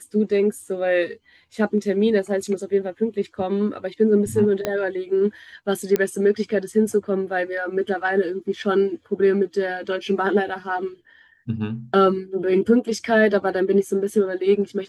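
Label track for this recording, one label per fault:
4.650000	4.650000	pop -9 dBFS
5.960000	5.960000	pop -8 dBFS

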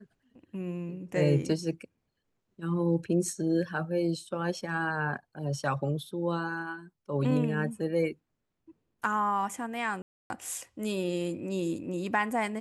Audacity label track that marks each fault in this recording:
10.020000	10.300000	dropout 281 ms

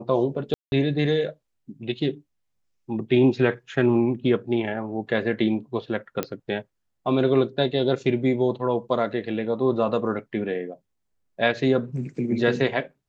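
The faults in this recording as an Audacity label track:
0.540000	0.720000	dropout 181 ms
6.230000	6.230000	pop -11 dBFS

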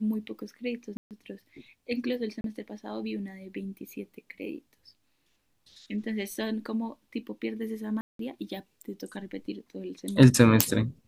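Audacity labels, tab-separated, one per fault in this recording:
0.970000	1.110000	dropout 138 ms
2.410000	2.440000	dropout 32 ms
8.010000	8.190000	dropout 183 ms

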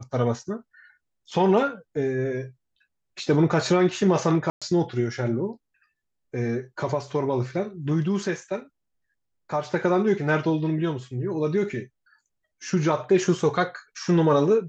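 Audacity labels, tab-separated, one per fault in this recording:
4.500000	4.620000	dropout 116 ms

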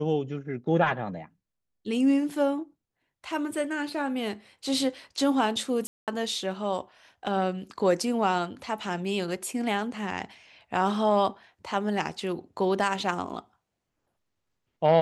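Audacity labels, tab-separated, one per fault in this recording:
5.870000	6.080000	dropout 207 ms

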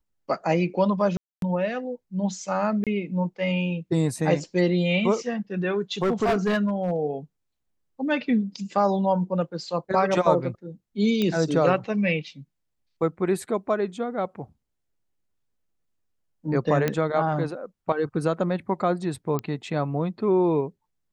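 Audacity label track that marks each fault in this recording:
1.170000	1.420000	dropout 252 ms
2.840000	2.870000	dropout 27 ms
6.020000	6.960000	clipped -18 dBFS
11.220000	11.220000	pop -13 dBFS
16.880000	16.880000	pop -10 dBFS
19.390000	19.390000	pop -15 dBFS

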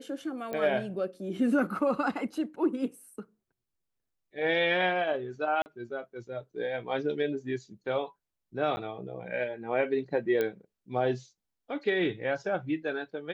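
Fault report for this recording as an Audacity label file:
0.530000	0.530000	pop -22 dBFS
5.620000	5.660000	dropout 39 ms
8.760000	8.770000	dropout 10 ms
10.410000	10.410000	pop -17 dBFS

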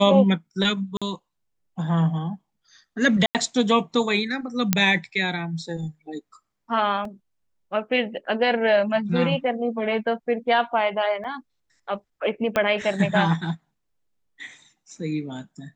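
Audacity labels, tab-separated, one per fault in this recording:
0.970000	1.020000	dropout 46 ms
3.260000	3.350000	dropout 88 ms
4.730000	4.730000	pop -2 dBFS
7.050000	7.050000	dropout 2.7 ms
11.240000	11.250000	dropout 5.8 ms
12.560000	12.560000	pop -9 dBFS

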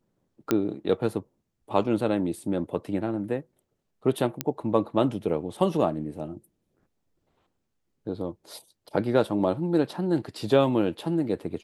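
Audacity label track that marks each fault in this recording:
0.510000	0.510000	pop -9 dBFS
4.410000	4.410000	pop -9 dBFS

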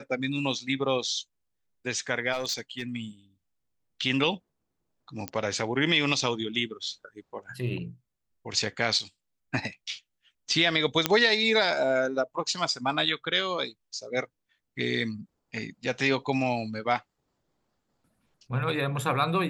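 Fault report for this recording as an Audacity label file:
2.320000	2.830000	clipped -25 dBFS
5.280000	5.280000	pop -15 dBFS
8.990000	9.000000	dropout 5.2 ms
11.060000	11.060000	pop -5 dBFS

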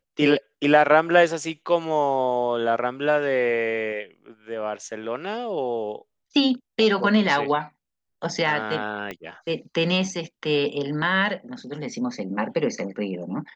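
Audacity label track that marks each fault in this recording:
9.110000	9.110000	pop -18 dBFS

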